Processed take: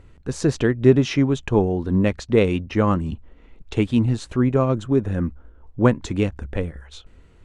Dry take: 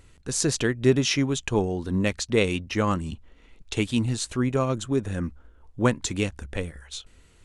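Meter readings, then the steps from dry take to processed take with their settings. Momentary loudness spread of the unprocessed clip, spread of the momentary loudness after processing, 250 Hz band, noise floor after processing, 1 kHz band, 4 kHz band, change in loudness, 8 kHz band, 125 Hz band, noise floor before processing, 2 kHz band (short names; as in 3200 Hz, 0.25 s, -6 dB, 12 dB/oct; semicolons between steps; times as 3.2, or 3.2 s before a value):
12 LU, 11 LU, +6.0 dB, -50 dBFS, +3.5 dB, -4.5 dB, +4.5 dB, n/a, +6.0 dB, -55 dBFS, -0.5 dB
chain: LPF 1100 Hz 6 dB/oct; gain +6 dB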